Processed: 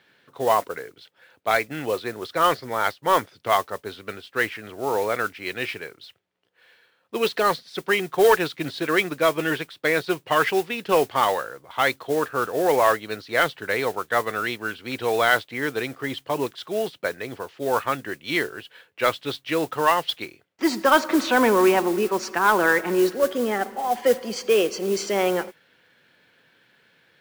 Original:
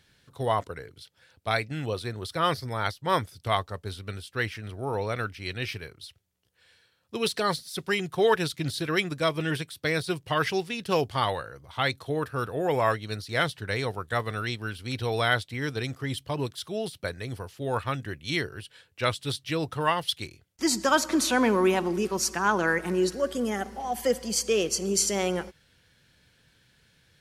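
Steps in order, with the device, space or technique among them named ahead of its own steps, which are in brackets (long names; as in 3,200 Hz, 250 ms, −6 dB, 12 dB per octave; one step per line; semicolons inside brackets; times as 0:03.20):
carbon microphone (band-pass filter 300–2,700 Hz; soft clipping −14 dBFS, distortion −21 dB; noise that follows the level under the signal 18 dB)
level +7.5 dB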